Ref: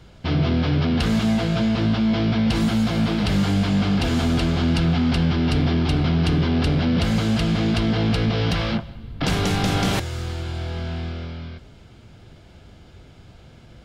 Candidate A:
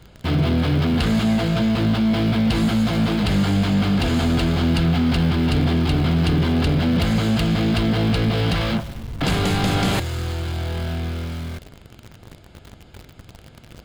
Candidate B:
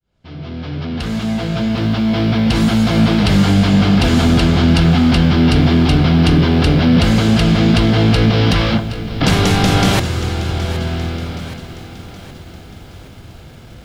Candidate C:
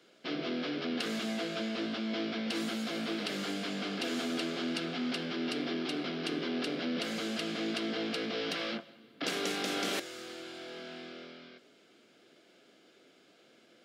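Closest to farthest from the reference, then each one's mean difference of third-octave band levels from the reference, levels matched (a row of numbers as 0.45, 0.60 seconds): A, B, C; 2.5, 3.5, 7.0 decibels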